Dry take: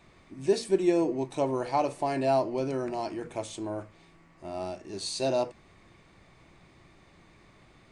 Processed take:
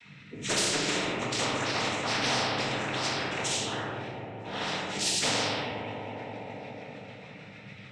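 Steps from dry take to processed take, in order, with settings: per-bin expansion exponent 1.5; bell 2900 Hz +6.5 dB 1.2 oct; notch 1100 Hz, Q 8.2; in parallel at -1 dB: level quantiser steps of 11 dB; on the sum: rotary speaker horn 1.2 Hz, later 6.7 Hz, at 4.92; noise vocoder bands 12; on a send: analogue delay 0.204 s, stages 4096, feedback 69%, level -21 dB; on the sum: shoebox room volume 390 m³, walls mixed, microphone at 1.8 m; spectral compressor 4:1; gain -8 dB

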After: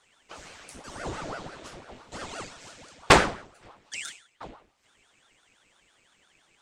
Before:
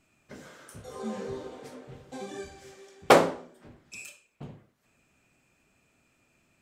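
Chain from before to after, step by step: EQ curve 860 Hz 0 dB, 2800 Hz +8 dB, 8100 Hz +7 dB, 12000 Hz -7 dB; ring modulator with a swept carrier 590 Hz, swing 85%, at 5.9 Hz; gain +2.5 dB

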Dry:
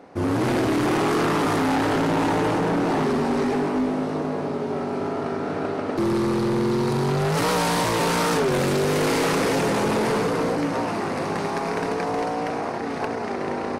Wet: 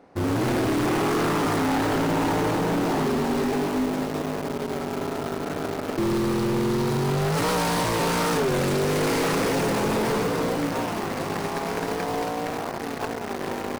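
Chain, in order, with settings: low shelf 69 Hz +8.5 dB; in parallel at -5 dB: bit-crush 4-bit; on the sum: gain -6.5 dB

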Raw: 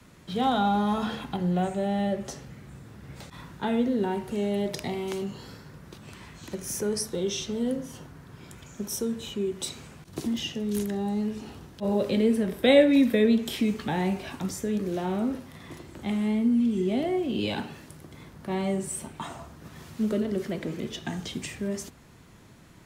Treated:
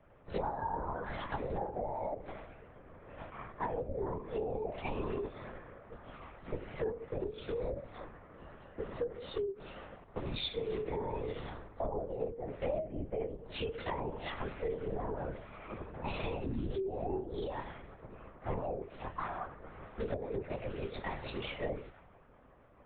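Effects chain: inharmonic rescaling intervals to 109%; low-pass opened by the level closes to 1000 Hz, open at -22.5 dBFS; HPF 370 Hz 24 dB/oct; treble ducked by the level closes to 910 Hz, closed at -29.5 dBFS; compressor 16:1, threshold -46 dBFS, peak gain reduction 31 dB; LPC vocoder at 8 kHz whisper; three-band expander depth 40%; gain +12 dB

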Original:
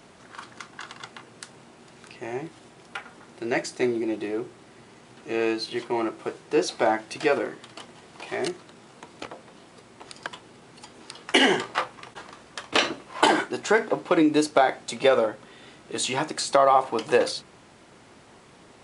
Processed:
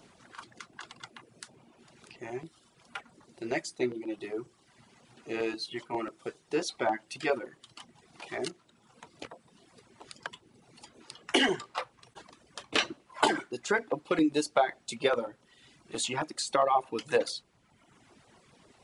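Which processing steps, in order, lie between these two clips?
reverb removal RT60 1.1 s; LFO notch saw down 7.4 Hz 250–2500 Hz; gain -4.5 dB

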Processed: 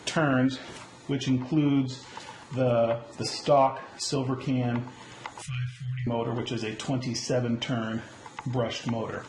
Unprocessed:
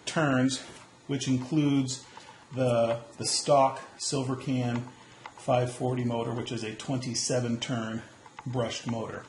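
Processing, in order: treble ducked by the level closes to 2900 Hz, closed at -25 dBFS; added harmonics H 8 -39 dB, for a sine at -12 dBFS; in parallel at +0.5 dB: compressor, threshold -39 dBFS, peak gain reduction 19 dB; 5.42–6.07 on the sum: inverse Chebyshev band-stop 250–950 Hz, stop band 40 dB

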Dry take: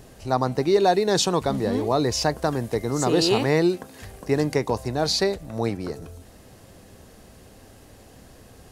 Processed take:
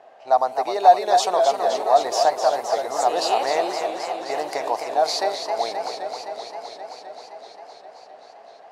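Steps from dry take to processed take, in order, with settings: low-pass opened by the level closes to 2300 Hz, open at -21 dBFS; in parallel at -3 dB: limiter -14.5 dBFS, peak gain reduction 7.5 dB; on the sum: resonant high-pass 700 Hz, resonance Q 4.9; warbling echo 0.261 s, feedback 78%, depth 134 cents, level -7 dB; gain -7 dB

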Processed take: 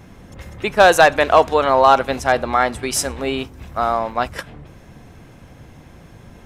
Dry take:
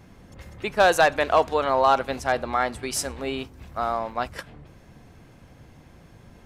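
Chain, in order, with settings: notch 4500 Hz, Q 14; gain +7 dB

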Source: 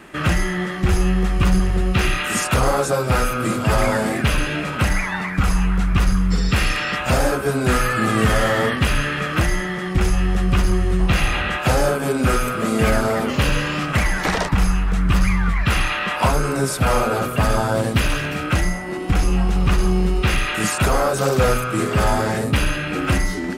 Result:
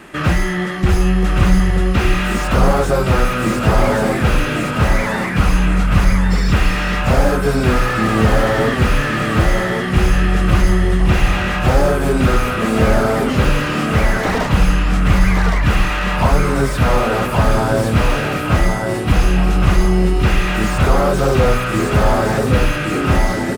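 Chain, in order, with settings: on a send: feedback echo 1.116 s, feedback 30%, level -6 dB; on the sum: slew limiter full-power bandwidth 130 Hz; gain +3.5 dB

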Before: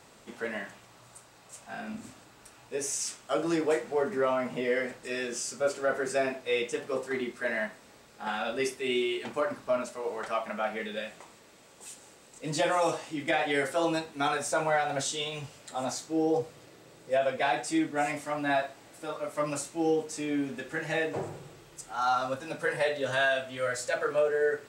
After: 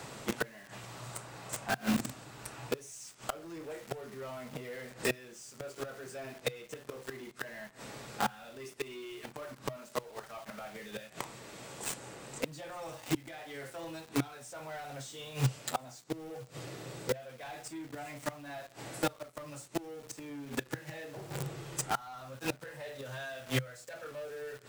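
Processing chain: in parallel at -4 dB: companded quantiser 2-bit; on the sum: flipped gate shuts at -22 dBFS, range -27 dB; bell 130 Hz +11.5 dB 0.31 oct; three-band squash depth 40%; gain +3.5 dB

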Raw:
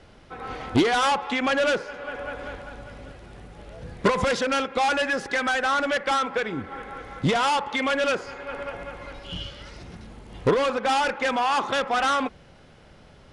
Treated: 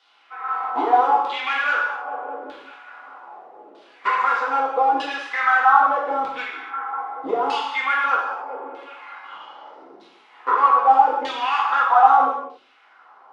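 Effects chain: Chebyshev high-pass 270 Hz, order 3; band shelf 1000 Hz +11 dB 1.1 oct; LFO band-pass saw down 0.8 Hz 320–3800 Hz; non-linear reverb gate 0.32 s falling, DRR -4.5 dB

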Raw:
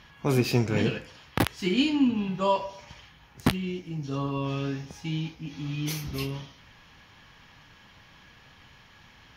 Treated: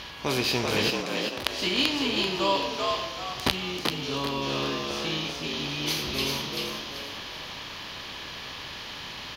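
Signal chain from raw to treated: per-bin compression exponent 0.6; ten-band EQ 125 Hz -8 dB, 250 Hz -6 dB, 4000 Hz +9 dB; 0.9–1.46 level quantiser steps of 17 dB; on a send: frequency-shifting echo 0.387 s, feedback 37%, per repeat +75 Hz, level -3 dB; on the sum: gain -2.5 dB

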